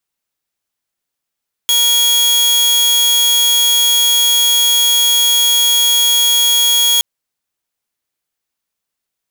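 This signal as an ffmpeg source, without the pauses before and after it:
ffmpeg -f lavfi -i "aevalsrc='0.447*(2*mod(3320*t,1)-1)':duration=5.32:sample_rate=44100" out.wav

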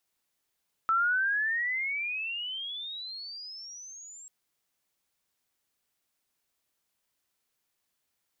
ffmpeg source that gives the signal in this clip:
ffmpeg -f lavfi -i "aevalsrc='pow(10,(-22-23*t/3.39)/20)*sin(2*PI*1310*3.39/(30.5*log(2)/12)*(exp(30.5*log(2)/12*t/3.39)-1))':duration=3.39:sample_rate=44100" out.wav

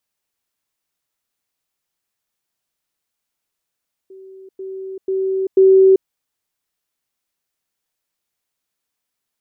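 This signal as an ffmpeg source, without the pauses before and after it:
ffmpeg -f lavfi -i "aevalsrc='pow(10,(-36.5+10*floor(t/0.49))/20)*sin(2*PI*382*t)*clip(min(mod(t,0.49),0.39-mod(t,0.49))/0.005,0,1)':duration=1.96:sample_rate=44100" out.wav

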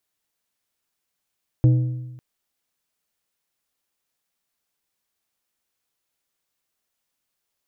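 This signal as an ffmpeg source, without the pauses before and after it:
ffmpeg -f lavfi -i "aevalsrc='0.316*pow(10,-3*t/1.12)*sin(2*PI*125*t)+0.0944*pow(10,-3*t/0.851)*sin(2*PI*312.5*t)+0.0282*pow(10,-3*t/0.739)*sin(2*PI*500*t)+0.00841*pow(10,-3*t/0.691)*sin(2*PI*625*t)+0.00251*pow(10,-3*t/0.639)*sin(2*PI*812.5*t)':duration=0.55:sample_rate=44100" out.wav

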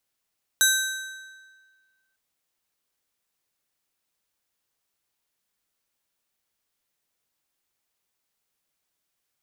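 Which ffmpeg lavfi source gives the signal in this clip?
ffmpeg -f lavfi -i "aevalsrc='0.106*pow(10,-3*t/1.66)*sin(2*PI*1550*t)+0.0944*pow(10,-3*t/1.261)*sin(2*PI*3875*t)+0.0841*pow(10,-3*t/1.095)*sin(2*PI*6200*t)+0.075*pow(10,-3*t/1.024)*sin(2*PI*7750*t)+0.0668*pow(10,-3*t/0.947)*sin(2*PI*10075*t)+0.0596*pow(10,-3*t/0.874)*sin(2*PI*13175*t)':duration=1.55:sample_rate=44100" out.wav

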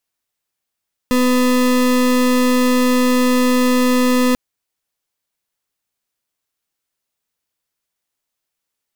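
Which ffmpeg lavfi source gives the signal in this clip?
ffmpeg -f lavfi -i "aevalsrc='0.2*(2*lt(mod(251*t,1),0.33)-1)':duration=3.24:sample_rate=44100" out.wav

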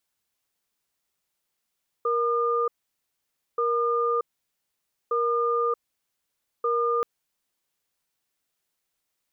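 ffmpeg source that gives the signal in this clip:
ffmpeg -f lavfi -i "aevalsrc='0.0631*(sin(2*PI*470*t)+sin(2*PI*1210*t))*clip(min(mod(t,1.53),0.63-mod(t,1.53))/0.005,0,1)':duration=4.98:sample_rate=44100" out.wav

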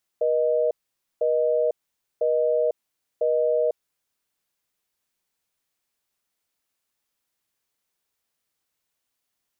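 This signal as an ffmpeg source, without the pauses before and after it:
ffmpeg -f lavfi -i "aevalsrc='0.0841*(sin(2*PI*480*t)+sin(2*PI*620*t))*clip(min(mod(t,1),0.5-mod(t,1))/0.005,0,1)':duration=3.98:sample_rate=44100" out.wav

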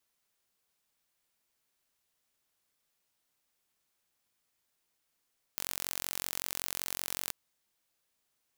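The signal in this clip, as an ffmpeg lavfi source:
ffmpeg -f lavfi -i "aevalsrc='0.398*eq(mod(n,974),0)':duration=1.74:sample_rate=44100" out.wav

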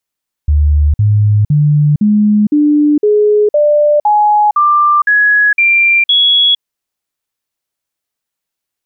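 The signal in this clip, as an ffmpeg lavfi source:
ffmpeg -f lavfi -i "aevalsrc='0.501*clip(min(mod(t,0.51),0.46-mod(t,0.51))/0.005,0,1)*sin(2*PI*74.1*pow(2,floor(t/0.51)/2)*mod(t,0.51))':duration=6.12:sample_rate=44100" out.wav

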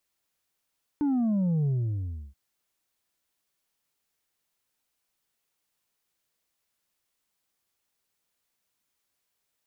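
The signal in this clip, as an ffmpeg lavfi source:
ffmpeg -f lavfi -i "aevalsrc='0.0708*clip((1.33-t)/0.68,0,1)*tanh(1.5*sin(2*PI*300*1.33/log(65/300)*(exp(log(65/300)*t/1.33)-1)))/tanh(1.5)':duration=1.33:sample_rate=44100" out.wav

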